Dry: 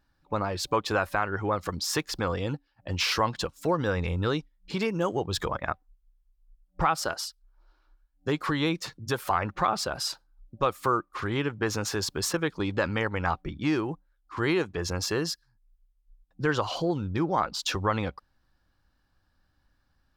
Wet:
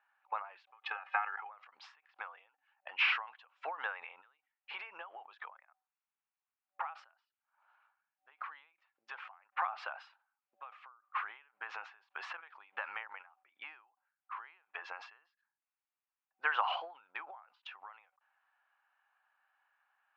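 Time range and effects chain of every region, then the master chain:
0.7–1.49 HPF 490 Hz + comb 2.4 ms, depth 92% + level quantiser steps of 10 dB
whole clip: elliptic band-pass 760–2700 Hz, stop band 80 dB; ending taper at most 120 dB/s; gain +2.5 dB

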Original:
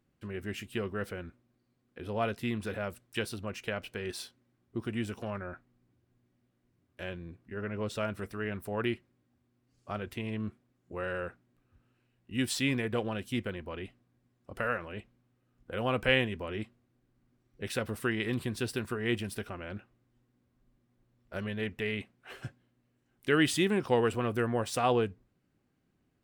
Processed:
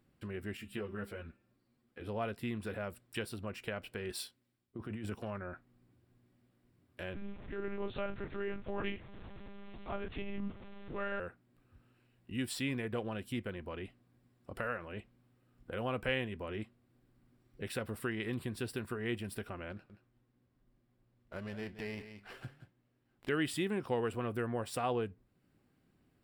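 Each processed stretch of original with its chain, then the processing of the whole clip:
0.57–2.08 de-hum 197.1 Hz, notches 19 + ensemble effect
4.1–5.15 negative-ratio compressor -37 dBFS + three-band expander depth 70%
7.14–11.2 zero-crossing step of -44.5 dBFS + doubler 24 ms -4 dB + monotone LPC vocoder at 8 kHz 200 Hz
19.72–23.29 echo 0.176 s -13 dB + flange 1 Hz, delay 5.4 ms, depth 4.6 ms, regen +90% + running maximum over 5 samples
whole clip: dynamic EQ 4700 Hz, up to -3 dB, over -50 dBFS, Q 0.71; compressor 1.5:1, threshold -52 dBFS; notch 6300 Hz, Q 5.2; gain +3 dB

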